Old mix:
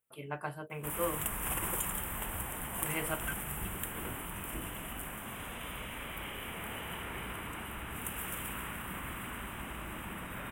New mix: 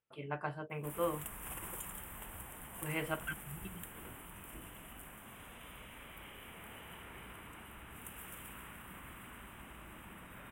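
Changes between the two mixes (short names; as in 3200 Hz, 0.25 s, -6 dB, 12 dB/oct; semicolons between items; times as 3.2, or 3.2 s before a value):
speech: add air absorption 110 m; background -10.0 dB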